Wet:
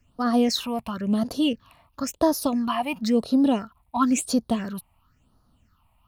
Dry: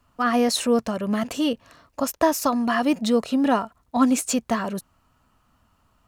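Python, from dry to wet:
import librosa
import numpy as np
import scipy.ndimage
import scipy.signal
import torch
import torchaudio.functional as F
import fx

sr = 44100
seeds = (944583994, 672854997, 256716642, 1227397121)

y = fx.phaser_stages(x, sr, stages=6, low_hz=380.0, high_hz=2400.0, hz=0.97, feedback_pct=45)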